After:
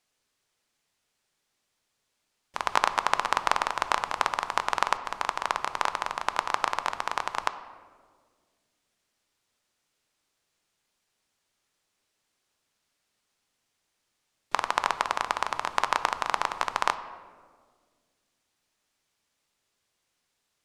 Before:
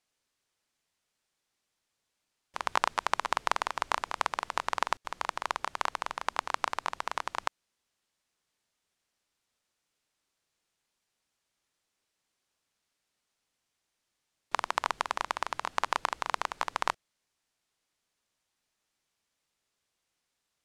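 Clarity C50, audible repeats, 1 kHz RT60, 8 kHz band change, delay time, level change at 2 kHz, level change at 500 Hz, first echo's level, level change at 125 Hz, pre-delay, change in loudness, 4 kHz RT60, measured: 12.5 dB, none, 1.5 s, +4.0 dB, none, +4.5 dB, +4.5 dB, none, +4.5 dB, 5 ms, +4.5 dB, 0.90 s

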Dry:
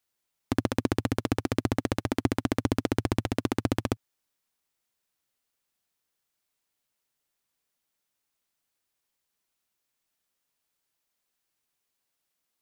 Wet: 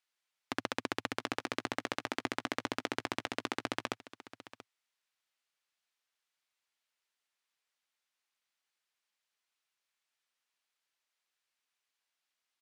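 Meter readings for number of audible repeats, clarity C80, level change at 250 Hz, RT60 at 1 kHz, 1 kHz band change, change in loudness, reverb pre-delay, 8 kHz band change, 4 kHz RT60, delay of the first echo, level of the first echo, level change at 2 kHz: 1, none, -13.5 dB, none, -3.5 dB, -8.5 dB, none, -6.0 dB, none, 0.683 s, -16.0 dB, -0.5 dB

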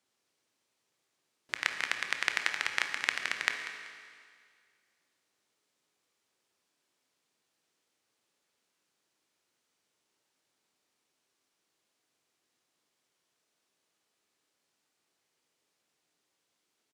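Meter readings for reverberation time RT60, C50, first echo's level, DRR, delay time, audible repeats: 2.0 s, 6.0 dB, -15.0 dB, 5.0 dB, 0.191 s, 1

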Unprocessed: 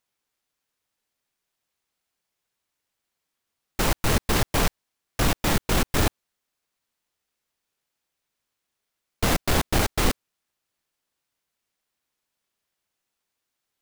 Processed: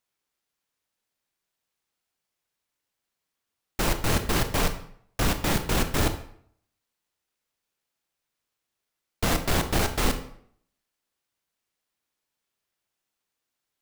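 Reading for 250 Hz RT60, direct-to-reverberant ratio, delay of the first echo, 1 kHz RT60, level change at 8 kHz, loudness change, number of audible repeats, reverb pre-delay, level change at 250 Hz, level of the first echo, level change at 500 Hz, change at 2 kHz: 0.65 s, 8.0 dB, none, 0.60 s, -2.0 dB, -2.0 dB, none, 26 ms, -1.5 dB, none, -1.5 dB, -2.0 dB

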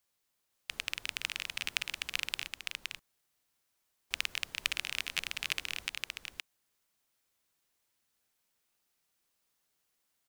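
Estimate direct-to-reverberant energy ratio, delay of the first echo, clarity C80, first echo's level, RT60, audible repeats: none, 0.518 s, none, -4.0 dB, none, 1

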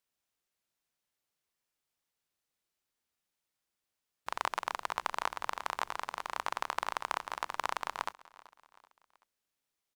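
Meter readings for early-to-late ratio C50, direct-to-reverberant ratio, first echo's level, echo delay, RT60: none, none, -21.0 dB, 0.382 s, none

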